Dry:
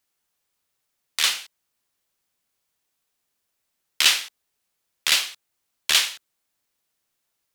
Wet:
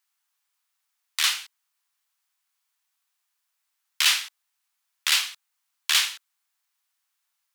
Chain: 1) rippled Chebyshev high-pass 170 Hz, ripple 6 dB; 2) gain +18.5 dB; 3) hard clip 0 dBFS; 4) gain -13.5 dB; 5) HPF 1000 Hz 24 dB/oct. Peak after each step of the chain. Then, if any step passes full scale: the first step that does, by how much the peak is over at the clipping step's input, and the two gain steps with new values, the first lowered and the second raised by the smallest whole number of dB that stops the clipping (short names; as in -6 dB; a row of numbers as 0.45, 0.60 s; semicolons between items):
-8.5, +10.0, 0.0, -13.5, -8.0 dBFS; step 2, 10.0 dB; step 2 +8.5 dB, step 4 -3.5 dB